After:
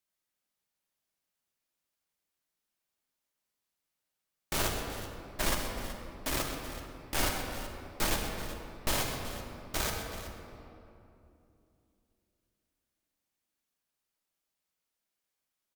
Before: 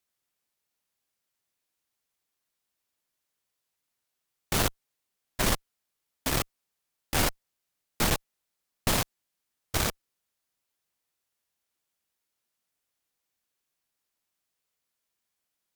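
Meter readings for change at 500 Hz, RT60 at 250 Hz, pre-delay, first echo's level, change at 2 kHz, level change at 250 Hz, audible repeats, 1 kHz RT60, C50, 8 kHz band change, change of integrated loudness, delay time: −2.5 dB, 3.7 s, 3 ms, −10.5 dB, −3.0 dB, −4.5 dB, 2, 2.6 s, 2.5 dB, −4.0 dB, −5.5 dB, 128 ms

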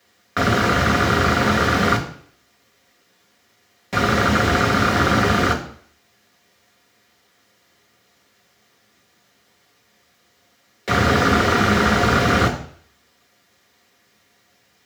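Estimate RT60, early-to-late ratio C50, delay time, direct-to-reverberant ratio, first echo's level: 0.60 s, 10.0 dB, no echo audible, 0.5 dB, no echo audible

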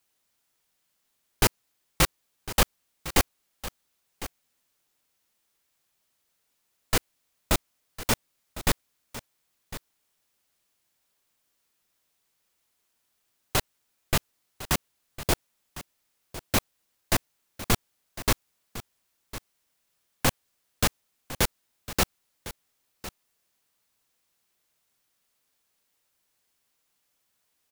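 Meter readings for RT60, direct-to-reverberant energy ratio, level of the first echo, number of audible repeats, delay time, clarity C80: no reverb audible, no reverb audible, −15.0 dB, 1, 1,055 ms, no reverb audible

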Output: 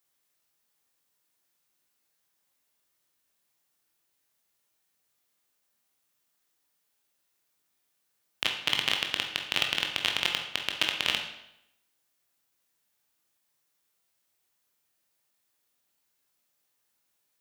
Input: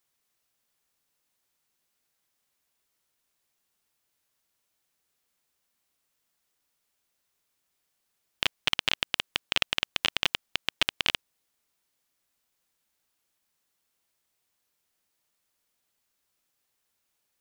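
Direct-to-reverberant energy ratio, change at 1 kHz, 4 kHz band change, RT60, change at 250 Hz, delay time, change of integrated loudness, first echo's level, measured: 2.0 dB, 0.0 dB, 0.0 dB, 0.80 s, 0.0 dB, no echo audible, 0.0 dB, no echo audible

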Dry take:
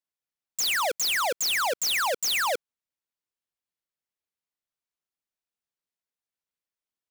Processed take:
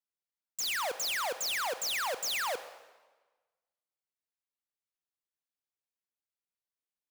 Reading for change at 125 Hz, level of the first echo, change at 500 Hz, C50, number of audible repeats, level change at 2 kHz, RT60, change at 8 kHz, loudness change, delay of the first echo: can't be measured, no echo audible, −7.0 dB, 12.0 dB, no echo audible, −7.0 dB, 1.3 s, −7.5 dB, −7.0 dB, no echo audible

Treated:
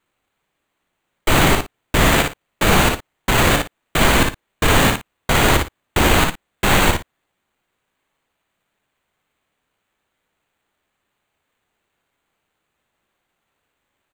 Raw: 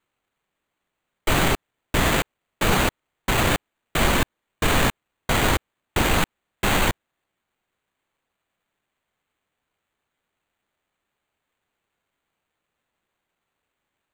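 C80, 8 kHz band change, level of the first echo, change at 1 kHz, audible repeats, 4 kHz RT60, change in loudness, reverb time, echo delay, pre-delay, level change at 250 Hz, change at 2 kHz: no reverb audible, +6.0 dB, −4.5 dB, +6.0 dB, 2, no reverb audible, +6.0 dB, no reverb audible, 58 ms, no reverb audible, +6.0 dB, +6.0 dB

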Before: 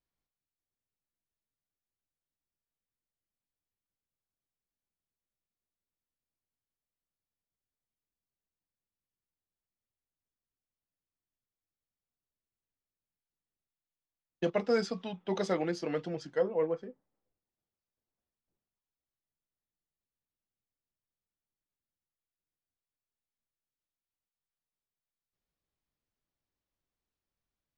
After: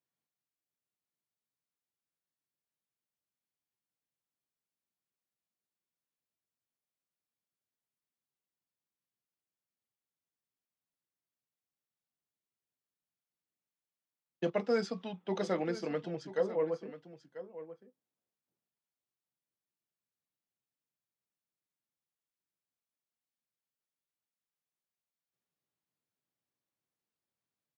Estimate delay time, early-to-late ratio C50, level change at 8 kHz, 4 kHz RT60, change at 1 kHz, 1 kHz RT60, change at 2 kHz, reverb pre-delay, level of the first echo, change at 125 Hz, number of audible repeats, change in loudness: 989 ms, no reverb audible, −4.0 dB, no reverb audible, −2.0 dB, no reverb audible, −2.5 dB, no reverb audible, −14.0 dB, −2.0 dB, 1, −2.0 dB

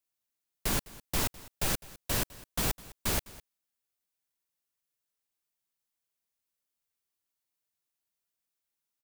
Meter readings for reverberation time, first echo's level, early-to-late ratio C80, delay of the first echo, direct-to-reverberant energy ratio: no reverb audible, −20.0 dB, no reverb audible, 206 ms, no reverb audible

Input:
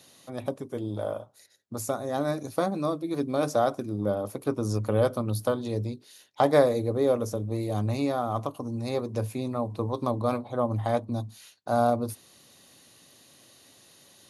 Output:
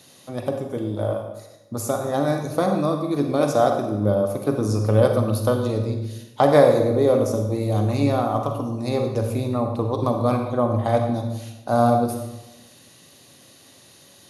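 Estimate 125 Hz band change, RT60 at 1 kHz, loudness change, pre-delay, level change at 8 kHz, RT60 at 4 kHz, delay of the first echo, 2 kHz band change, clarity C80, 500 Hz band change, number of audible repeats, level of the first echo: +8.0 dB, 1.0 s, +6.5 dB, 36 ms, +5.0 dB, 0.75 s, no echo audible, +5.5 dB, 7.5 dB, +6.5 dB, no echo audible, no echo audible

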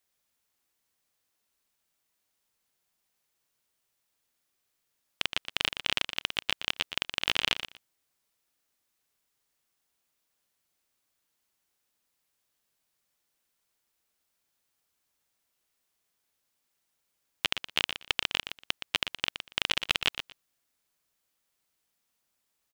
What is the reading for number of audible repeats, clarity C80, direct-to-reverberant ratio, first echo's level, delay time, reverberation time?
2, no reverb audible, no reverb audible, −9.5 dB, 119 ms, no reverb audible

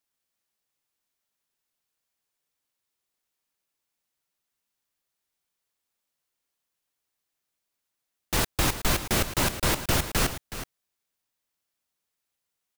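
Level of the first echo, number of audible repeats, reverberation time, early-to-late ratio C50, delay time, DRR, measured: −12.0 dB, 1, no reverb audible, no reverb audible, 371 ms, no reverb audible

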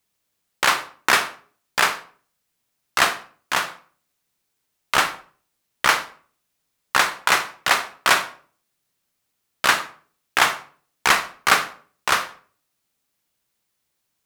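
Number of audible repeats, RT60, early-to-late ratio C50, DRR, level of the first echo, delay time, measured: no echo audible, 0.45 s, 12.5 dB, 10.0 dB, no echo audible, no echo audible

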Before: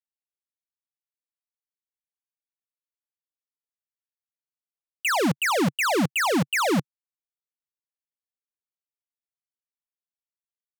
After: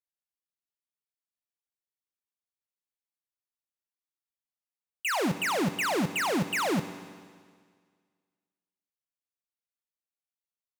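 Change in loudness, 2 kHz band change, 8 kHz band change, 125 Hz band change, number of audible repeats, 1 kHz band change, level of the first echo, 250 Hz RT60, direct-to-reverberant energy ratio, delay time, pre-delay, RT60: −5.0 dB, −5.0 dB, −5.0 dB, −5.0 dB, no echo audible, −5.0 dB, no echo audible, 1.8 s, 10.0 dB, no echo audible, 10 ms, 1.8 s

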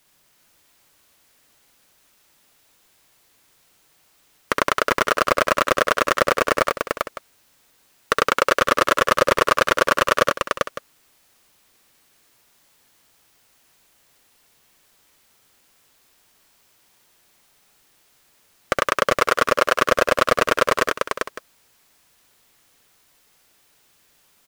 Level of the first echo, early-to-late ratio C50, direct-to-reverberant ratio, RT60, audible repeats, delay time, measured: −3.5 dB, no reverb audible, no reverb audible, no reverb audible, 3, 66 ms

